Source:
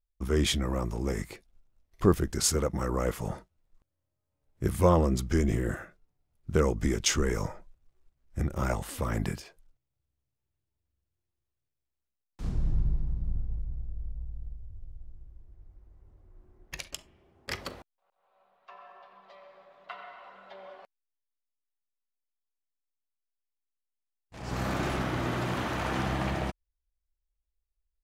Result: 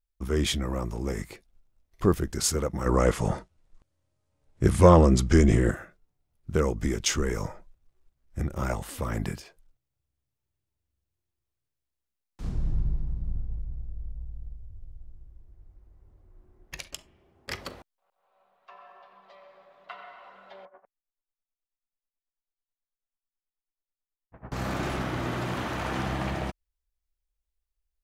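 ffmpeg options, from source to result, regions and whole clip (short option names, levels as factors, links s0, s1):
-filter_complex "[0:a]asettb=1/sr,asplit=3[s0][s1][s2];[s0]atrim=end=2.864[s3];[s1]atrim=start=2.86:end=5.71,asetpts=PTS-STARTPTS,afade=t=in:d=0.004:c=qsin,afade=t=out:st=2.846:d=0.004:c=qsin,lowpass=f=10000:w=0.5412,lowpass=f=10000:w=1.3066,acontrast=88[s4];[s2]atrim=start=5.706[s5];[s3][s4]acrossfade=d=0.004:c1=hsin:c2=qsin[s6];[s6][s5]acrossfade=d=0.004:c1=qsin:c2=hsin,asettb=1/sr,asplit=3[s7][s8][s9];[s7]atrim=end=20.654[s10];[s8]atrim=start=20.65:end=24.52,asetpts=PTS-STARTPTS,afade=t=in:d=0.004:c=qsin,afade=t=out:st=3.866:d=0.004:c=qsin,lowpass=f=1700:w=0.5412,lowpass=f=1700:w=1.3066,aeval=exprs='val(0)*pow(10,-18*(0.5-0.5*cos(2*PI*9.2*n/s))/20)':c=same[s11];[s9]atrim=start=24.516[s12];[s10][s11]acrossfade=d=0.004:c1=hsin:c2=qsin[s13];[s13][s12]acrossfade=d=0.004:c1=qsin:c2=hsin"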